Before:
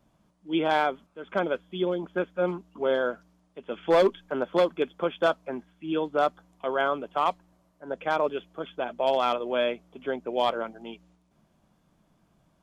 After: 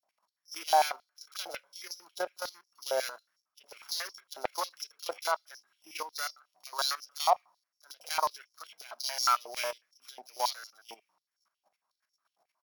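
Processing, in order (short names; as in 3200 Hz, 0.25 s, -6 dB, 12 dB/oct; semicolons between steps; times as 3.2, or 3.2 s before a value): sample sorter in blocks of 8 samples; bands offset in time highs, lows 30 ms, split 3400 Hz; level quantiser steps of 13 dB; on a send at -20 dB: reverb RT60 0.45 s, pre-delay 5 ms; on the sum: stepped high-pass 11 Hz 730–5400 Hz; gain -3.5 dB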